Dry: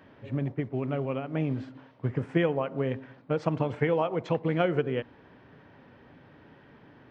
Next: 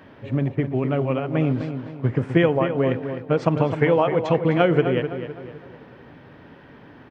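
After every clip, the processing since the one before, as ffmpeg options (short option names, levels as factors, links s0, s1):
-filter_complex "[0:a]asplit=2[s0][s1];[s1]adelay=256,lowpass=f=3300:p=1,volume=0.355,asplit=2[s2][s3];[s3]adelay=256,lowpass=f=3300:p=1,volume=0.43,asplit=2[s4][s5];[s5]adelay=256,lowpass=f=3300:p=1,volume=0.43,asplit=2[s6][s7];[s7]adelay=256,lowpass=f=3300:p=1,volume=0.43,asplit=2[s8][s9];[s9]adelay=256,lowpass=f=3300:p=1,volume=0.43[s10];[s0][s2][s4][s6][s8][s10]amix=inputs=6:normalize=0,volume=2.37"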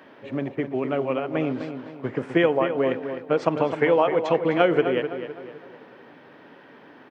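-af "highpass=280"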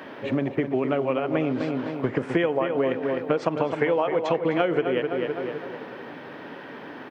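-af "acompressor=threshold=0.0282:ratio=4,volume=2.82"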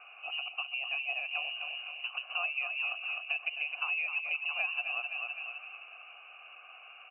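-filter_complex "[0:a]lowpass=f=2600:t=q:w=0.5098,lowpass=f=2600:t=q:w=0.6013,lowpass=f=2600:t=q:w=0.9,lowpass=f=2600:t=q:w=2.563,afreqshift=-3100,asplit=3[s0][s1][s2];[s0]bandpass=f=730:t=q:w=8,volume=1[s3];[s1]bandpass=f=1090:t=q:w=8,volume=0.501[s4];[s2]bandpass=f=2440:t=q:w=8,volume=0.355[s5];[s3][s4][s5]amix=inputs=3:normalize=0"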